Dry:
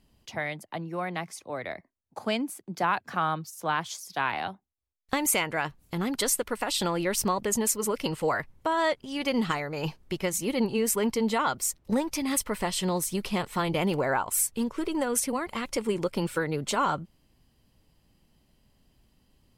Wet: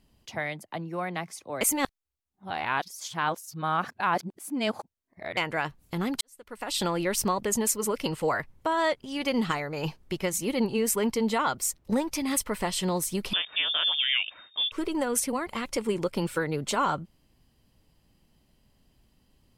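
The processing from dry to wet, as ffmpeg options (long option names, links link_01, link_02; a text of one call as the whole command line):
ffmpeg -i in.wav -filter_complex "[0:a]asettb=1/sr,asplit=3[link_01][link_02][link_03];[link_01]atrim=end=13.334[link_04];[link_02]atrim=start=13.33:end=14.72,asetpts=PTS-STARTPTS,afade=type=in:duration=0.004:curve=qsin,afade=type=out:start_time=1.386:duration=0.004:curve=qsin,lowpass=frequency=3100:width_type=q:width=0.5098,lowpass=frequency=3100:width_type=q:width=0.6013,lowpass=frequency=3100:width_type=q:width=0.9,lowpass=frequency=3100:width_type=q:width=2.563,afreqshift=-3700[link_05];[link_03]atrim=start=14.716[link_06];[link_04][link_05]acrossfade=duration=0.004:curve1=hsin:curve2=qsin[link_07];[link_07][link_06]acrossfade=duration=0.004:curve1=qsin:curve2=hsin,asplit=4[link_08][link_09][link_10][link_11];[link_08]atrim=end=1.612[link_12];[link_09]atrim=start=1.608:end=5.372,asetpts=PTS-STARTPTS,areverse[link_13];[link_10]atrim=start=5.368:end=6.21,asetpts=PTS-STARTPTS,afade=type=out:start_time=0.838:duration=0.004:curve=hsin[link_14];[link_11]atrim=start=6.21,asetpts=PTS-STARTPTS,afade=type=in:duration=0.58:curve=qua[link_15];[link_12][link_13]acrossfade=duration=0.004:curve1=hsin:curve2=hsin[link_16];[link_14][link_15]concat=n=2:v=0:a=1[link_17];[link_16][link_17]acrossfade=duration=0.004:curve1=hsin:curve2=hsin" out.wav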